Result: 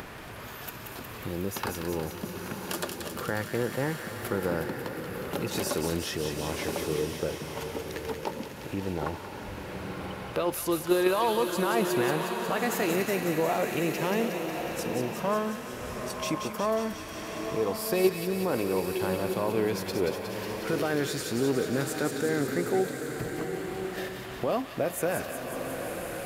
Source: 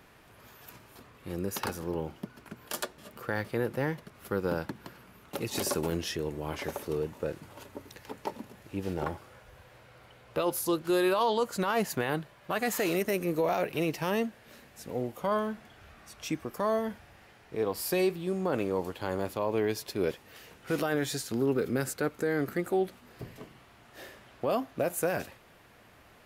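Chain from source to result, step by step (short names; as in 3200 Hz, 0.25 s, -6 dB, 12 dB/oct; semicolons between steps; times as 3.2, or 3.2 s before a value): in parallel at 0 dB: level quantiser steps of 24 dB; on the sum: bell 11000 Hz -3 dB 2.9 oct; upward compressor, threshold -30 dBFS; thin delay 0.181 s, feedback 72%, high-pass 1700 Hz, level -5 dB; bloom reverb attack 1.11 s, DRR 5 dB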